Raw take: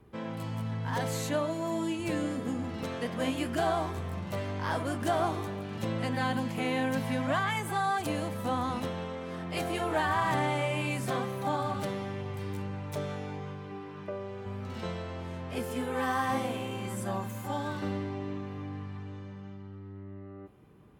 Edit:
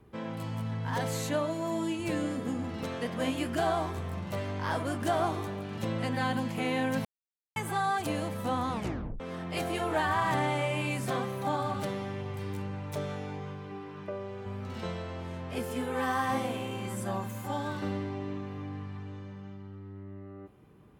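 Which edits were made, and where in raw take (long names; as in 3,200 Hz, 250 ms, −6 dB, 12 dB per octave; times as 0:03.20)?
0:07.05–0:07.56: silence
0:08.73: tape stop 0.47 s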